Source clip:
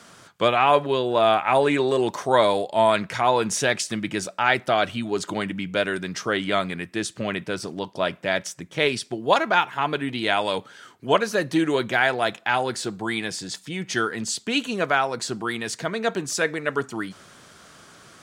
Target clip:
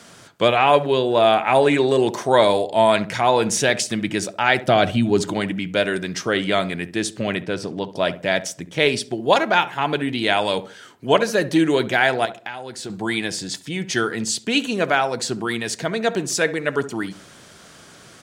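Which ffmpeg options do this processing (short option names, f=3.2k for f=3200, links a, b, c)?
-filter_complex "[0:a]asettb=1/sr,asplit=3[a][b][c];[a]atrim=end=4.674[d];[b]atrim=start=4.67:end=5.31,asetpts=PTS-STARTPTS,afade=t=in:d=0.004:c=qsin,afade=t=out:st=0.636:d=0.004:c=qsin,lowshelf=f=280:g=9.5[e];[c]atrim=start=5.306[f];[d][e]acrossfade=d=0.004:c1=hsin:c2=qsin[g];[g][f]acrossfade=d=0.004:c1=qsin:c2=hsin,asettb=1/sr,asplit=3[h][i][j];[h]atrim=end=7.424[k];[i]atrim=start=7.42:end=7.9,asetpts=PTS-STARTPTS,afade=t=in:d=0.004:c=qsin,afade=t=out:st=0.476:d=0.004:c=qsin,lowpass=f=3.9k:p=1[l];[j]atrim=start=7.896[m];[k][l]acrossfade=d=0.004:c1=hsin:c2=qsin[n];[n][m]acrossfade=d=0.004:c1=qsin:c2=hsin,equalizer=f=1.2k:t=o:w=0.66:g=-5,asettb=1/sr,asplit=3[o][p][q];[o]atrim=end=12.254[r];[p]atrim=start=12.25:end=12.9,asetpts=PTS-STARTPTS,afade=t=in:d=0.004:c=qsin,afade=t=out:st=0.646:d=0.004:c=qsin,acompressor=threshold=-32dB:ratio=16[s];[q]atrim=start=12.896[t];[r][s]acrossfade=d=0.004:c1=hsin:c2=qsin[u];[u][t]acrossfade=d=0.004:c1=qsin:c2=hsin,asplit=2[v][w];[w]adelay=68,lowpass=f=900:p=1,volume=-12.5dB,asplit=2[x][y];[y]adelay=68,lowpass=f=900:p=1,volume=0.39,asplit=2[z][aa];[aa]adelay=68,lowpass=f=900:p=1,volume=0.39,asplit=2[ab][ac];[ac]adelay=68,lowpass=f=900:p=1,volume=0.39[ad];[v][x][z][ab][ad]amix=inputs=5:normalize=0,volume=4dB"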